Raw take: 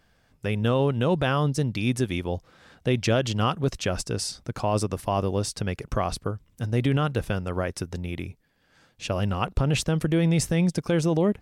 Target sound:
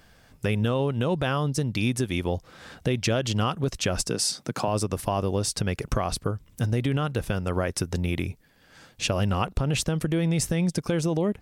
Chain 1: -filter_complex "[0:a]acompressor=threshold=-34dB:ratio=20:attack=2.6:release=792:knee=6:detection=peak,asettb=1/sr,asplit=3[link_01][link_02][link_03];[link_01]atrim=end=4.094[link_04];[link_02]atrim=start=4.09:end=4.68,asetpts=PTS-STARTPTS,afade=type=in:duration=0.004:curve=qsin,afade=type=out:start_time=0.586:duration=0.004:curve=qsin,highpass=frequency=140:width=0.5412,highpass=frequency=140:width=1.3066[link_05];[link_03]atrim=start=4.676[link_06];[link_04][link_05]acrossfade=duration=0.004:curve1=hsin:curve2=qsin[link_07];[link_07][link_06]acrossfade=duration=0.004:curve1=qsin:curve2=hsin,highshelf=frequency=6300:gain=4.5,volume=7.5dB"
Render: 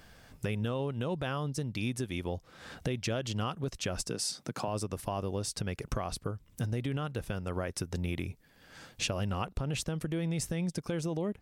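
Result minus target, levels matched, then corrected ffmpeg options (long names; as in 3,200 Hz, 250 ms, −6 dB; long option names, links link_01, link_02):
downward compressor: peak gain reduction +8.5 dB
-filter_complex "[0:a]acompressor=threshold=-25dB:ratio=20:attack=2.6:release=792:knee=6:detection=peak,asettb=1/sr,asplit=3[link_01][link_02][link_03];[link_01]atrim=end=4.094[link_04];[link_02]atrim=start=4.09:end=4.68,asetpts=PTS-STARTPTS,afade=type=in:duration=0.004:curve=qsin,afade=type=out:start_time=0.586:duration=0.004:curve=qsin,highpass=frequency=140:width=0.5412,highpass=frequency=140:width=1.3066[link_05];[link_03]atrim=start=4.676[link_06];[link_04][link_05]acrossfade=duration=0.004:curve1=hsin:curve2=qsin[link_07];[link_07][link_06]acrossfade=duration=0.004:curve1=qsin:curve2=hsin,highshelf=frequency=6300:gain=4.5,volume=7.5dB"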